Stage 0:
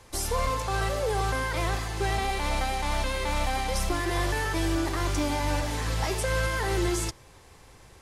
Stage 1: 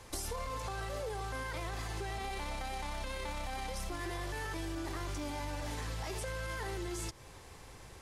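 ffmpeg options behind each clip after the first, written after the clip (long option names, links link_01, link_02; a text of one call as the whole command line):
ffmpeg -i in.wav -af "alimiter=limit=-23.5dB:level=0:latency=1,acompressor=threshold=-36dB:ratio=6" out.wav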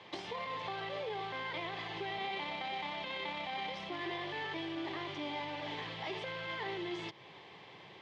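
ffmpeg -i in.wav -filter_complex "[0:a]asplit=2[link_01][link_02];[link_02]acrusher=samples=15:mix=1:aa=0.000001,volume=-10dB[link_03];[link_01][link_03]amix=inputs=2:normalize=0,highpass=frequency=160:width=0.5412,highpass=frequency=160:width=1.3066,equalizer=frequency=250:width_type=q:width=4:gain=-10,equalizer=frequency=510:width_type=q:width=4:gain=-5,equalizer=frequency=1400:width_type=q:width=4:gain=-8,equalizer=frequency=2100:width_type=q:width=4:gain=5,equalizer=frequency=3200:width_type=q:width=4:gain=8,lowpass=frequency=3900:width=0.5412,lowpass=frequency=3900:width=1.3066,volume=1dB" out.wav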